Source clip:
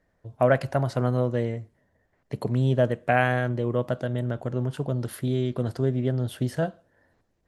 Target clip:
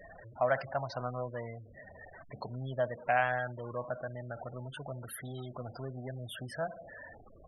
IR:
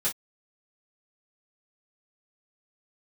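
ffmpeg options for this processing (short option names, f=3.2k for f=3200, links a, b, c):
-filter_complex "[0:a]aeval=exprs='val(0)+0.5*0.0282*sgn(val(0))':c=same,asplit=2[a][b];[1:a]atrim=start_sample=2205,adelay=61[c];[b][c]afir=irnorm=-1:irlink=0,volume=-25dB[d];[a][d]amix=inputs=2:normalize=0,afftfilt=real='re*gte(hypot(re,im),0.0316)':imag='im*gte(hypot(re,im),0.0316)':win_size=1024:overlap=0.75,lowshelf=f=540:t=q:w=1.5:g=-10,volume=-7.5dB"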